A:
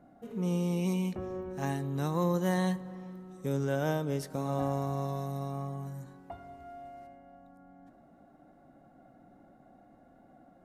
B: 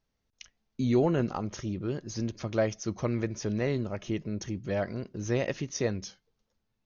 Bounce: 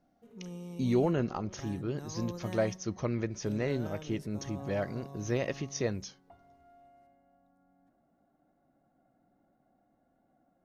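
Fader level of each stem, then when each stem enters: -13.0 dB, -2.5 dB; 0.00 s, 0.00 s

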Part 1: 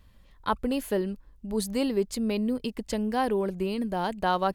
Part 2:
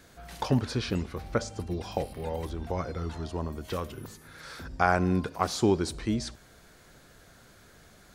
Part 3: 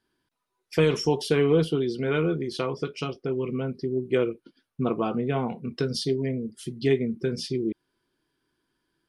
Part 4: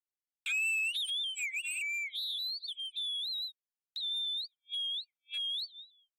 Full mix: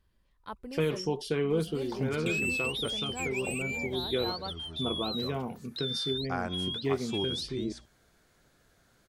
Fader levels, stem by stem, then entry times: -14.5 dB, -10.5 dB, -7.5 dB, -0.5 dB; 0.00 s, 1.50 s, 0.00 s, 1.80 s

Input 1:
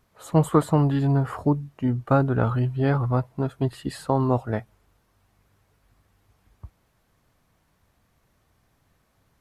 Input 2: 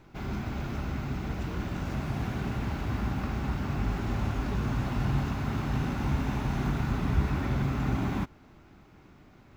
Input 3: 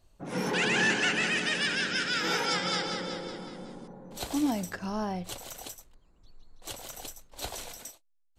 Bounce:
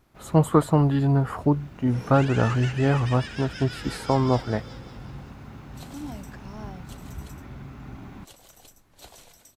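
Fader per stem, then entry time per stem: +0.5 dB, -12.0 dB, -10.0 dB; 0.00 s, 0.00 s, 1.60 s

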